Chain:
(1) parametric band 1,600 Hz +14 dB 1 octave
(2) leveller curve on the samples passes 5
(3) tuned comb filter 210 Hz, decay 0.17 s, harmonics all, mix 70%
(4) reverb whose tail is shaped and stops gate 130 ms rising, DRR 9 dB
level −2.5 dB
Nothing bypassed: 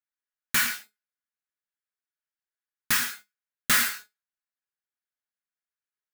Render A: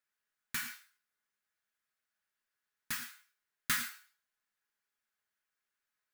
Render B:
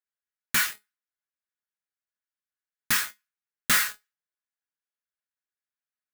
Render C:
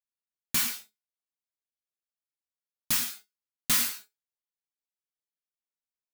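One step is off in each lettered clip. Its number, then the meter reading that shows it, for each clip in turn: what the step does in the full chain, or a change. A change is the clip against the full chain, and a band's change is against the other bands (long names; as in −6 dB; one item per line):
2, change in crest factor +8.5 dB
4, change in momentary loudness spread −6 LU
1, 2 kHz band −8.5 dB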